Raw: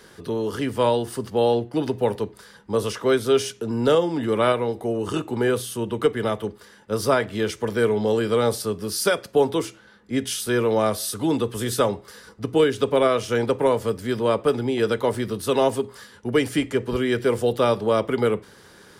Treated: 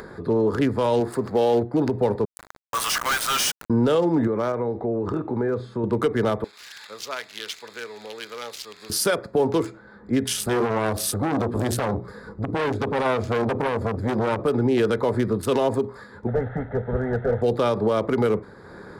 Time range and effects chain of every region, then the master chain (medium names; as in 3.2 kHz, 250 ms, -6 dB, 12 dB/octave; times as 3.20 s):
1.00–1.63 s: jump at every zero crossing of -38.5 dBFS + bass shelf 140 Hz -9.5 dB
2.25–3.70 s: inverse Chebyshev high-pass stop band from 180 Hz, stop band 80 dB + companded quantiser 2-bit
4.27–5.84 s: compression 3:1, threshold -28 dBFS + distance through air 120 m
6.44–8.90 s: zero-crossing glitches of -16.5 dBFS + band-pass filter 3.4 kHz, Q 2
10.30–14.44 s: bass shelf 270 Hz +8.5 dB + hum notches 60/120/180/240/300/360 Hz + transformer saturation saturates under 1.5 kHz
16.27–17.42 s: one-bit delta coder 16 kbps, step -34 dBFS + static phaser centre 1.6 kHz, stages 8 + tape noise reduction on one side only decoder only
whole clip: local Wiener filter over 15 samples; peak limiter -18.5 dBFS; upward compressor, threshold -40 dBFS; trim +6 dB